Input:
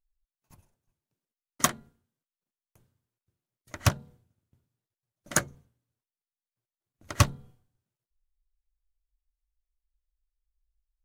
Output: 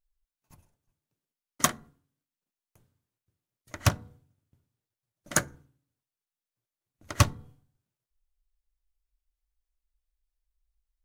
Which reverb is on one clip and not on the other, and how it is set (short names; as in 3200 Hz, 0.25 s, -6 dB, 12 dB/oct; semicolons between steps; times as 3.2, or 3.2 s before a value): FDN reverb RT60 0.42 s, low-frequency decay 1.45×, high-frequency decay 0.55×, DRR 19 dB